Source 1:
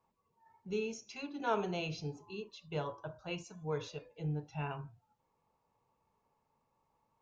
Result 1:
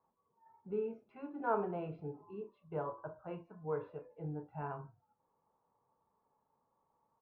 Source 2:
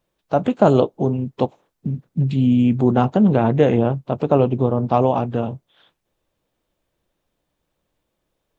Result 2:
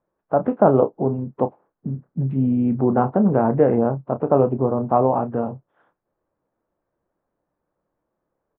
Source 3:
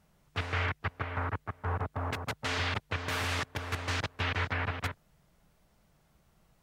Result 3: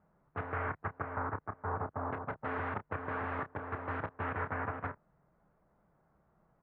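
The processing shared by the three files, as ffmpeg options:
-filter_complex "[0:a]lowpass=f=1.5k:w=0.5412,lowpass=f=1.5k:w=1.3066,lowshelf=f=120:g=-11,asplit=2[a][b];[b]adelay=30,volume=-11dB[c];[a][c]amix=inputs=2:normalize=0"

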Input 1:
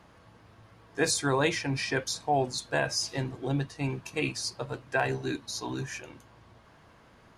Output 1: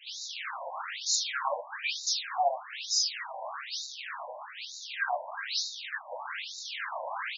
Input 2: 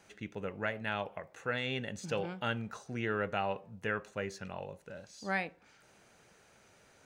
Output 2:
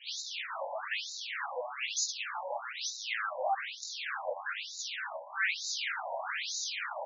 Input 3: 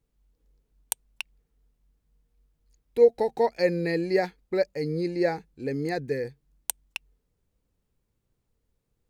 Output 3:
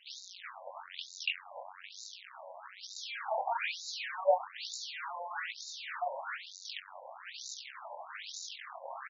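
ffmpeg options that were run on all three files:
-filter_complex "[0:a]aeval=exprs='val(0)+0.5*0.106*sgn(val(0))':c=same,lowshelf=f=400:g=-6,flanger=delay=15.5:depth=7.4:speed=0.4,acrossover=split=1100|3900[a][b][c];[b]adelay=70[d];[a]adelay=100[e];[e][d][c]amix=inputs=3:normalize=0,afftfilt=real='re*between(b*sr/1024,720*pow(5200/720,0.5+0.5*sin(2*PI*1.1*pts/sr))/1.41,720*pow(5200/720,0.5+0.5*sin(2*PI*1.1*pts/sr))*1.41)':imag='im*between(b*sr/1024,720*pow(5200/720,0.5+0.5*sin(2*PI*1.1*pts/sr))/1.41,720*pow(5200/720,0.5+0.5*sin(2*PI*1.1*pts/sr))*1.41)':win_size=1024:overlap=0.75,volume=2dB"

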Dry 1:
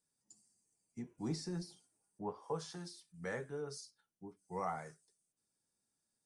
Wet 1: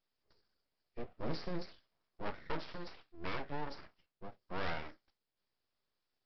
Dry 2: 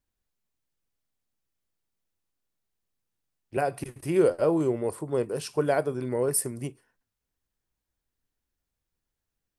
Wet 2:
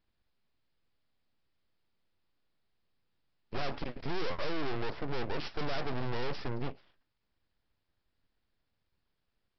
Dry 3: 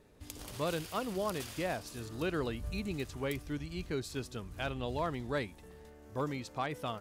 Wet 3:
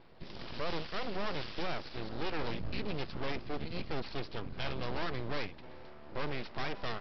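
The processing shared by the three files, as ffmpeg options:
-af "aeval=exprs='(tanh(63.1*val(0)+0.45)-tanh(0.45))/63.1':c=same,aresample=11025,aeval=exprs='abs(val(0))':c=same,aresample=44100,volume=7.5dB"

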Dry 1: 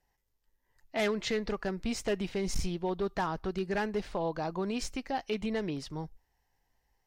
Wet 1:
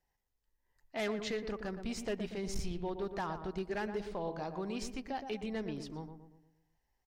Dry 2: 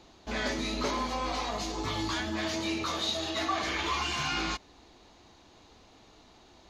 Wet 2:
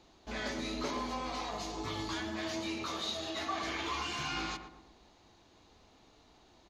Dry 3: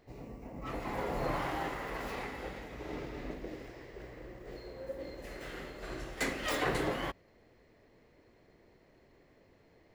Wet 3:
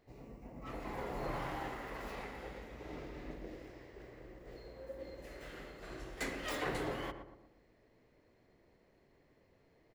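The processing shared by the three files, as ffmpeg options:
-filter_complex "[0:a]asplit=2[a][b];[b]adelay=118,lowpass=f=1.2k:p=1,volume=-7dB,asplit=2[c][d];[d]adelay=118,lowpass=f=1.2k:p=1,volume=0.5,asplit=2[e][f];[f]adelay=118,lowpass=f=1.2k:p=1,volume=0.5,asplit=2[g][h];[h]adelay=118,lowpass=f=1.2k:p=1,volume=0.5,asplit=2[i][j];[j]adelay=118,lowpass=f=1.2k:p=1,volume=0.5,asplit=2[k][l];[l]adelay=118,lowpass=f=1.2k:p=1,volume=0.5[m];[a][c][e][g][i][k][m]amix=inputs=7:normalize=0,volume=-6dB"

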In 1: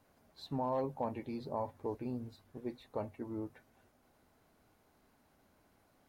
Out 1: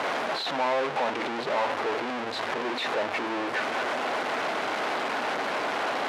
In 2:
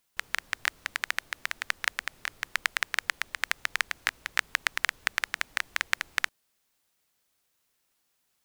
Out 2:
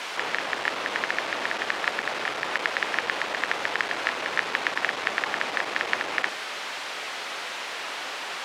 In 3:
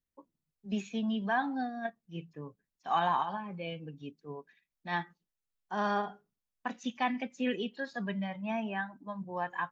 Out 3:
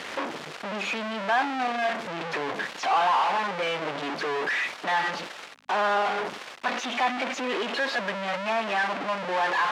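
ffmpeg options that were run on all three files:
-af "aeval=exprs='val(0)+0.5*0.119*sgn(val(0))':c=same,aeval=exprs='val(0)+0.00447*(sin(2*PI*50*n/s)+sin(2*PI*2*50*n/s)/2+sin(2*PI*3*50*n/s)/3+sin(2*PI*4*50*n/s)/4+sin(2*PI*5*50*n/s)/5)':c=same,highpass=490,lowpass=2.9k"

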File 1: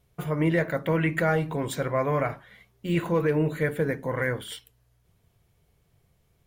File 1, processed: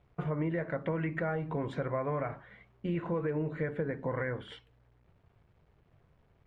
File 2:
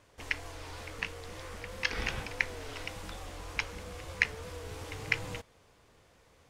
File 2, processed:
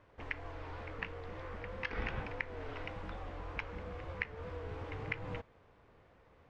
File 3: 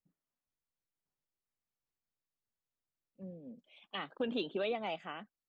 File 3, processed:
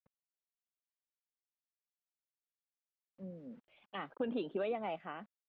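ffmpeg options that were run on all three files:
-af "acompressor=threshold=-30dB:ratio=5,acrusher=bits=10:mix=0:aa=0.000001,lowpass=1.9k"

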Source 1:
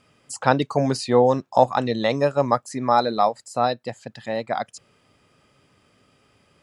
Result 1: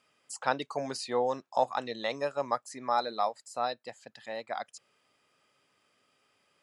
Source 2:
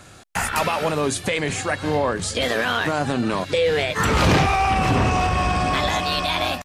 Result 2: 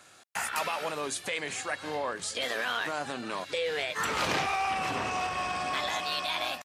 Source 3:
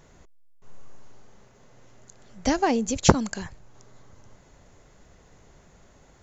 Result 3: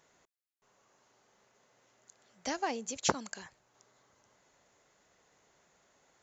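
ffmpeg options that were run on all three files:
-af "highpass=f=710:p=1,volume=-7.5dB"

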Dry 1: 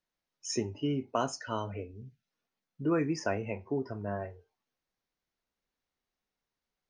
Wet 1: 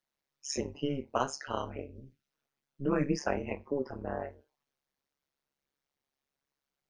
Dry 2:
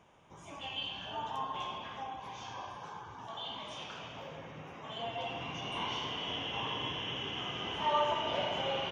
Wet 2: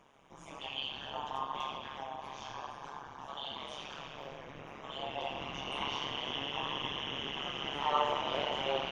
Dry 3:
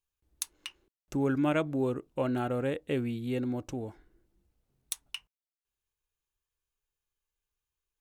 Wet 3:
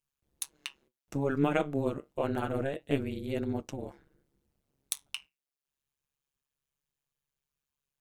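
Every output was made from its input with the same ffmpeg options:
-af "lowshelf=f=100:g=-6.5,flanger=delay=4.1:depth=7.8:regen=69:speed=0.28:shape=triangular,tremolo=f=140:d=1,volume=8.5dB"

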